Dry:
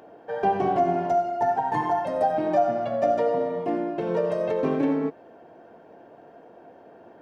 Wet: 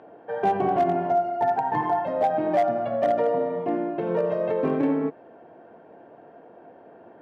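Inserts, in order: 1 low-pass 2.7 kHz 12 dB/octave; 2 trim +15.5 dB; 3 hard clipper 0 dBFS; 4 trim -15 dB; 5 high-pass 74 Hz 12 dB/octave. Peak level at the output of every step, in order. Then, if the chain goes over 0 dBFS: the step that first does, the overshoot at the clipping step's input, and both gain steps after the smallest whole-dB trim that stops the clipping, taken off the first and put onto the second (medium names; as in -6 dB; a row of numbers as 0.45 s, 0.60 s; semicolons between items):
-11.0 dBFS, +4.5 dBFS, 0.0 dBFS, -15.0 dBFS, -13.5 dBFS; step 2, 4.5 dB; step 2 +10.5 dB, step 4 -10 dB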